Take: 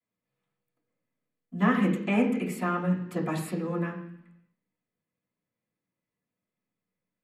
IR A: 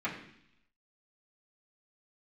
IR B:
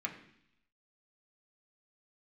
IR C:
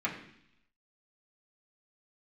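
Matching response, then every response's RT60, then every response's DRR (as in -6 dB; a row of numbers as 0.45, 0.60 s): A; 0.70, 0.70, 0.70 s; -10.0, -0.5, -6.0 dB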